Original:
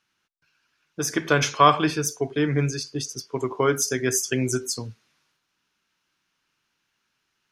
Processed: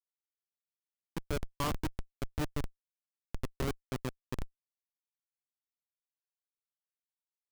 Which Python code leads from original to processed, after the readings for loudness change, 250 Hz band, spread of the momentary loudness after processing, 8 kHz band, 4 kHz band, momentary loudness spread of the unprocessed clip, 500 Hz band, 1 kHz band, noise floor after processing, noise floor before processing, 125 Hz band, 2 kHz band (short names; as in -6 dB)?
-16.0 dB, -15.0 dB, 11 LU, -25.0 dB, -17.5 dB, 13 LU, -18.0 dB, -20.0 dB, under -85 dBFS, -76 dBFS, -13.0 dB, -19.0 dB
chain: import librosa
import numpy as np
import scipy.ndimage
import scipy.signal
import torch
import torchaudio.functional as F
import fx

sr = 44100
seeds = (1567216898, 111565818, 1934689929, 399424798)

y = fx.env_lowpass_down(x, sr, base_hz=2500.0, full_db=-17.0)
y = fx.schmitt(y, sr, flips_db=-16.0)
y = F.gain(torch.from_numpy(y), -4.5).numpy()